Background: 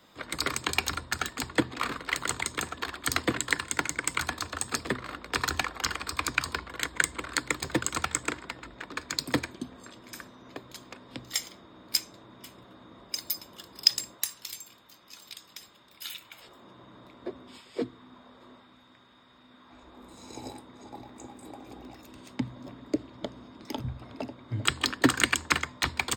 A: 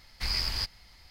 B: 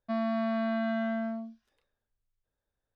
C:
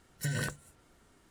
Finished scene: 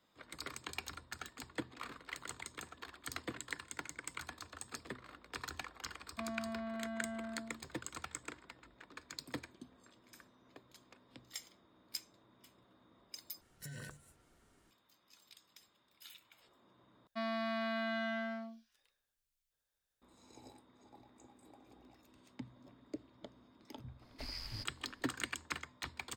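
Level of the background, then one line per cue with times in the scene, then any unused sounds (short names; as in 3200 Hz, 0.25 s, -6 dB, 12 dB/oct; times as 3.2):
background -16 dB
6.09 add B -12.5 dB
13.41 replace with C -5.5 dB + compressor, threshold -39 dBFS
17.07 replace with B -2.5 dB + tilt shelf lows -8.5 dB, about 1300 Hz
23.98 add A -15.5 dB, fades 0.05 s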